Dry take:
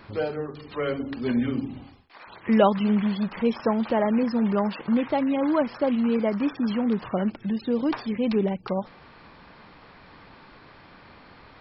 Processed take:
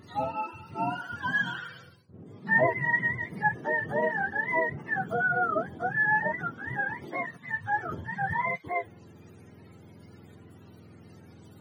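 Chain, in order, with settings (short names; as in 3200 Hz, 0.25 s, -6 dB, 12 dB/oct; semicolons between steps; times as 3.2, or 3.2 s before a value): spectrum mirrored in octaves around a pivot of 630 Hz; harmonic-percussive split percussive -9 dB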